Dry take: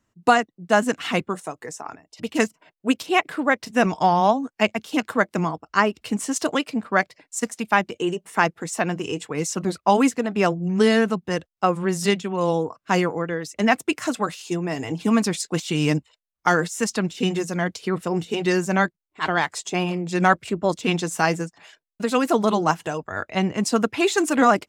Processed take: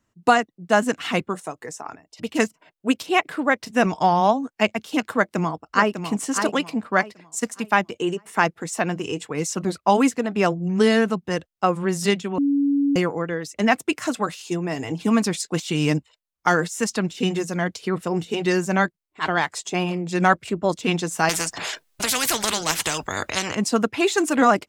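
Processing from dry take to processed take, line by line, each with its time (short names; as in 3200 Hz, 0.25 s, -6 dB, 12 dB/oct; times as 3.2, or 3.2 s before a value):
5.13–5.99 echo throw 0.6 s, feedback 30%, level -7.5 dB
12.38–12.96 bleep 282 Hz -16.5 dBFS
21.29–23.55 spectral compressor 4:1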